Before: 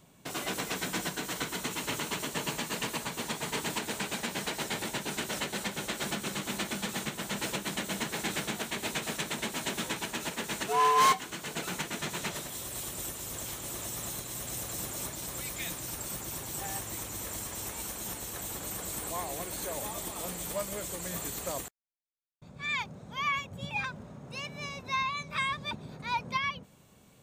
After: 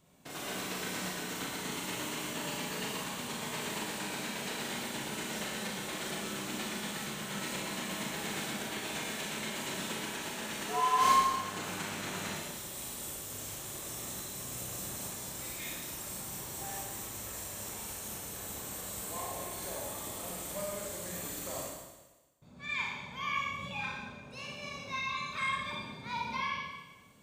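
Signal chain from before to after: Schroeder reverb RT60 1.2 s, combs from 29 ms, DRR -3.5 dB; 11.01–12.35 s: mains buzz 100 Hz, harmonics 17, -38 dBFS -1 dB/octave; trim -8 dB

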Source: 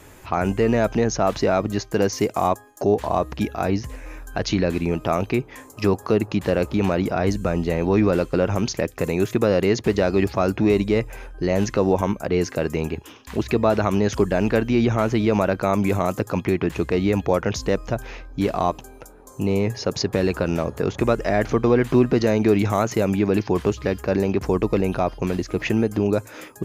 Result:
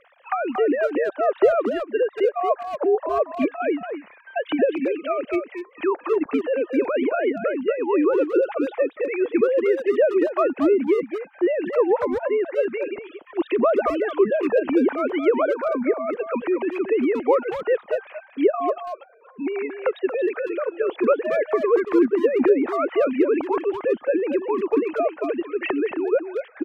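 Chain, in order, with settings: formants replaced by sine waves; low-pass that closes with the level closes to 1.5 kHz, closed at -13.5 dBFS; 15.42–16.10 s: rippled Chebyshev low-pass 2.3 kHz, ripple 3 dB; speakerphone echo 230 ms, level -7 dB; harmonic-percussive split percussive +6 dB; trim -3.5 dB

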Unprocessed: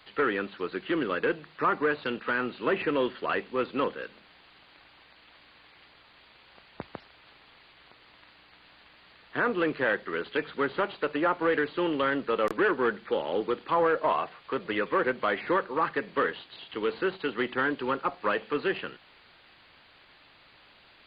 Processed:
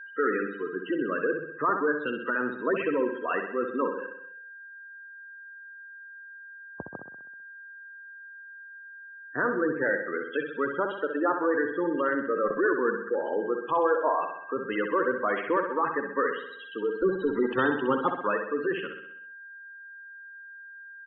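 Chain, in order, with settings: 17.02–18.11 s: square wave that keeps the level; whistle 1.6 kHz -40 dBFS; spectral gate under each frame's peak -15 dB strong; on a send: feedback delay 64 ms, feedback 56%, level -7 dB

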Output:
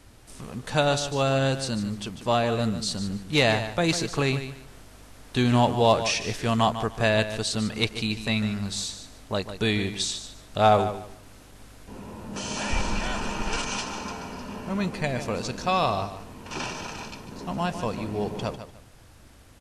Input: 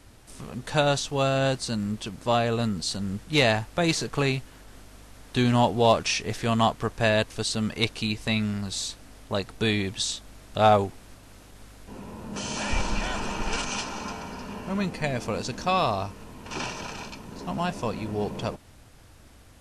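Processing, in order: feedback delay 148 ms, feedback 23%, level -11 dB

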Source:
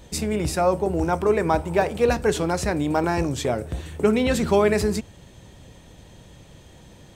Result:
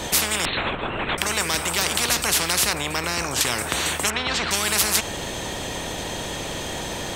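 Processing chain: 0.45–1.18 s: LPC vocoder at 8 kHz whisper; 2.73–3.41 s: tilt shelf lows +8.5 dB, about 770 Hz; 4.10–4.51 s: low-pass 2.3 kHz 12 dB/octave; spectrum-flattening compressor 10:1; trim +3.5 dB

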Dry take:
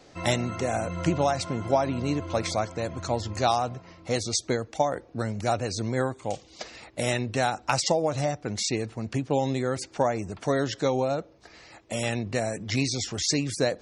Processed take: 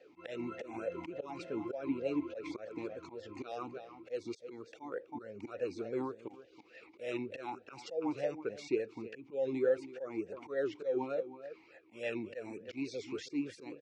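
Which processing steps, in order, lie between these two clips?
echo from a far wall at 56 m, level -14 dB; slow attack 174 ms; talking filter e-u 3.4 Hz; trim +3 dB

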